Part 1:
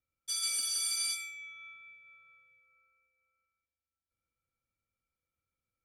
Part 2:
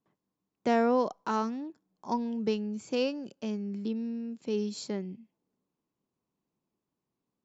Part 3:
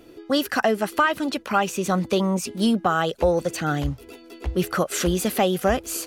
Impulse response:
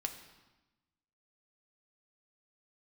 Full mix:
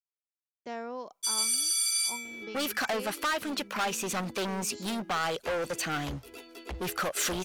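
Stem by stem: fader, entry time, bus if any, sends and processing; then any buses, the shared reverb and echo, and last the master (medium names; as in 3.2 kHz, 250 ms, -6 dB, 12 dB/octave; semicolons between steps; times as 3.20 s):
+1.5 dB, 0.95 s, no send, treble shelf 5.1 kHz +5.5 dB
-9.0 dB, 0.00 s, no send, expander -50 dBFS
-0.5 dB, 2.25 s, no send, hard clipper -24 dBFS, distortion -6 dB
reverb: none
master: bass shelf 440 Hz -9.5 dB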